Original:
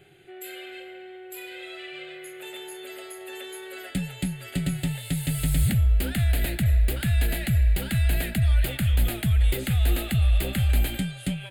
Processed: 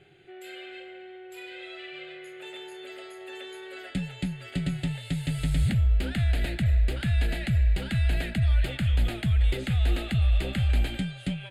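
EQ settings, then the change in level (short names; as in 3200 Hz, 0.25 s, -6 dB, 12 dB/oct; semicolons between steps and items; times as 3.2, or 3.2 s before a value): LPF 5800 Hz 12 dB/oct; -2.0 dB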